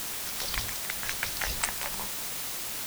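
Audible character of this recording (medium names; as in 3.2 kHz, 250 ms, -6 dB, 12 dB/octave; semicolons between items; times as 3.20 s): tremolo triangle 2.1 Hz, depth 65%; a quantiser's noise floor 6-bit, dither triangular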